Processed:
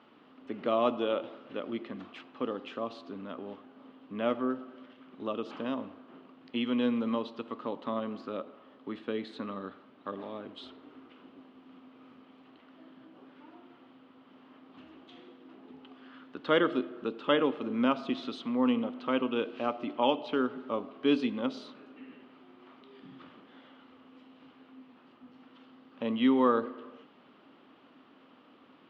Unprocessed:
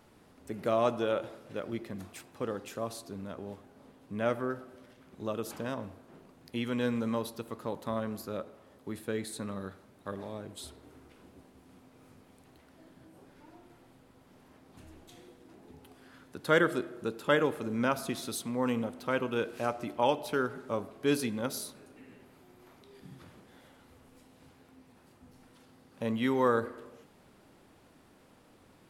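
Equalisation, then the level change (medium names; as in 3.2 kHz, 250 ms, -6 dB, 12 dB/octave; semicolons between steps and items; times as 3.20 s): dynamic bell 1.5 kHz, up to -7 dB, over -49 dBFS, Q 1.6; cabinet simulation 230–3800 Hz, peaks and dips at 260 Hz +9 dB, 1.2 kHz +8 dB, 3 kHz +8 dB; 0.0 dB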